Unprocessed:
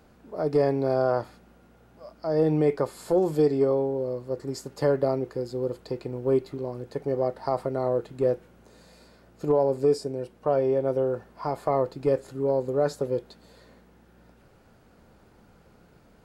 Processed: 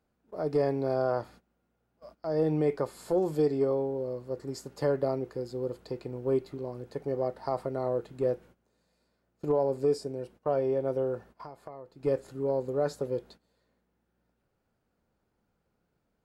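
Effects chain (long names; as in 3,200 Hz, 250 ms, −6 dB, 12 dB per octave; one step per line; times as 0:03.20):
noise gate −46 dBFS, range −16 dB
0:11.31–0:12.04: downward compressor 6 to 1, threshold −38 dBFS, peak gain reduction 17.5 dB
level −4.5 dB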